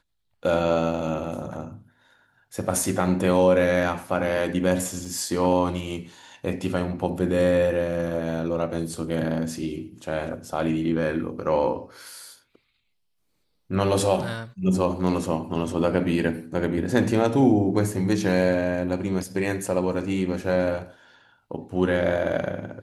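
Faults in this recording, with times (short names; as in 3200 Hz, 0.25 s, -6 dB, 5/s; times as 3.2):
5.05 gap 5 ms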